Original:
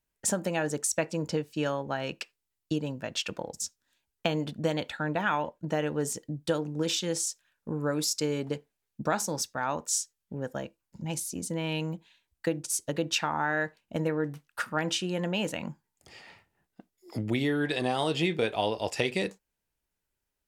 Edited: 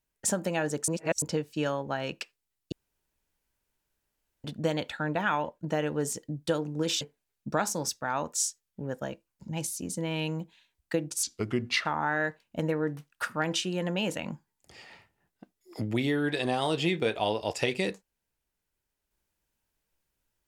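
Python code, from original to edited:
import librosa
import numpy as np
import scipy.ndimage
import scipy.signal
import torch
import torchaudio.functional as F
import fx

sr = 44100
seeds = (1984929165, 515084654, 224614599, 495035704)

y = fx.edit(x, sr, fx.reverse_span(start_s=0.88, length_s=0.34),
    fx.room_tone_fill(start_s=2.72, length_s=1.72),
    fx.cut(start_s=7.01, length_s=1.53),
    fx.speed_span(start_s=12.76, length_s=0.46, speed=0.74), tone=tone)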